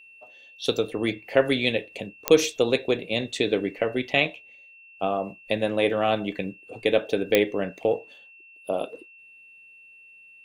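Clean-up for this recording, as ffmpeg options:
-af "adeclick=t=4,bandreject=f=2.7k:w=30"

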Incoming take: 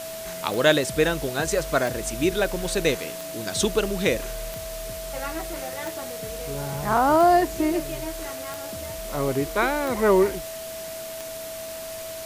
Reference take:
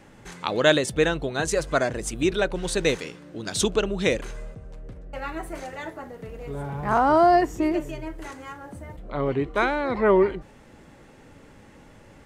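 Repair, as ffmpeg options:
-af "adeclick=t=4,bandreject=f=650:w=30,afwtdn=0.013"

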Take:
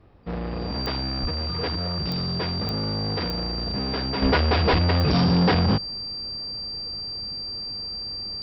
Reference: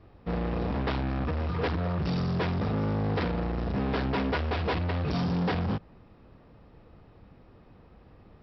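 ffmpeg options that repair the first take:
-filter_complex "[0:a]adeclick=t=4,bandreject=f=4.7k:w=30,asplit=3[a][b][c];[a]afade=t=out:st=1.21:d=0.02[d];[b]highpass=f=140:w=0.5412,highpass=f=140:w=1.3066,afade=t=in:st=1.21:d=0.02,afade=t=out:st=1.33:d=0.02[e];[c]afade=t=in:st=1.33:d=0.02[f];[d][e][f]amix=inputs=3:normalize=0,asplit=3[g][h][i];[g]afade=t=out:st=4.22:d=0.02[j];[h]highpass=f=140:w=0.5412,highpass=f=140:w=1.3066,afade=t=in:st=4.22:d=0.02,afade=t=out:st=4.34:d=0.02[k];[i]afade=t=in:st=4.34:d=0.02[l];[j][k][l]amix=inputs=3:normalize=0,asplit=3[m][n][o];[m]afade=t=out:st=4.7:d=0.02[p];[n]highpass=f=140:w=0.5412,highpass=f=140:w=1.3066,afade=t=in:st=4.7:d=0.02,afade=t=out:st=4.82:d=0.02[q];[o]afade=t=in:st=4.82:d=0.02[r];[p][q][r]amix=inputs=3:normalize=0,asetnsamples=n=441:p=0,asendcmd='4.22 volume volume -8.5dB',volume=0dB"

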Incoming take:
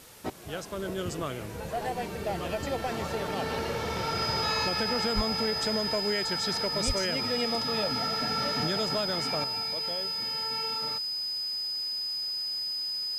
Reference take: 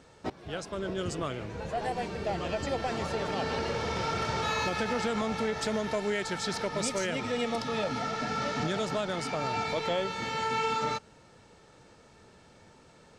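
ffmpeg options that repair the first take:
-filter_complex "[0:a]bandreject=f=5k:w=30,asplit=3[a][b][c];[a]afade=t=out:st=5.15:d=0.02[d];[b]highpass=f=140:w=0.5412,highpass=f=140:w=1.3066,afade=t=in:st=5.15:d=0.02,afade=t=out:st=5.27:d=0.02[e];[c]afade=t=in:st=5.27:d=0.02[f];[d][e][f]amix=inputs=3:normalize=0,asplit=3[g][h][i];[g]afade=t=out:st=6.86:d=0.02[j];[h]highpass=f=140:w=0.5412,highpass=f=140:w=1.3066,afade=t=in:st=6.86:d=0.02,afade=t=out:st=6.98:d=0.02[k];[i]afade=t=in:st=6.98:d=0.02[l];[j][k][l]amix=inputs=3:normalize=0,afwtdn=0.0028,asetnsamples=n=441:p=0,asendcmd='9.44 volume volume 9dB',volume=0dB"

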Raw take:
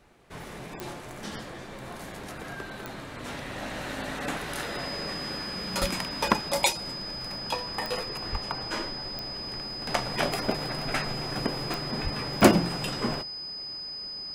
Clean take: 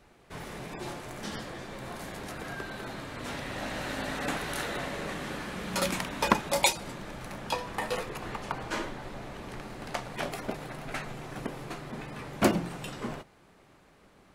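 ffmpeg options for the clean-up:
-filter_complex "[0:a]adeclick=t=4,bandreject=f=5k:w=30,asplit=3[a][b][c];[a]afade=t=out:st=5.8:d=0.02[d];[b]highpass=f=140:w=0.5412,highpass=f=140:w=1.3066,afade=t=in:st=5.8:d=0.02,afade=t=out:st=5.92:d=0.02[e];[c]afade=t=in:st=5.92:d=0.02[f];[d][e][f]amix=inputs=3:normalize=0,asplit=3[g][h][i];[g]afade=t=out:st=8.31:d=0.02[j];[h]highpass=f=140:w=0.5412,highpass=f=140:w=1.3066,afade=t=in:st=8.31:d=0.02,afade=t=out:st=8.43:d=0.02[k];[i]afade=t=in:st=8.43:d=0.02[l];[j][k][l]amix=inputs=3:normalize=0,asplit=3[m][n][o];[m]afade=t=out:st=12.03:d=0.02[p];[n]highpass=f=140:w=0.5412,highpass=f=140:w=1.3066,afade=t=in:st=12.03:d=0.02,afade=t=out:st=12.15:d=0.02[q];[o]afade=t=in:st=12.15:d=0.02[r];[p][q][r]amix=inputs=3:normalize=0,asetnsamples=n=441:p=0,asendcmd='9.87 volume volume -6.5dB',volume=0dB"

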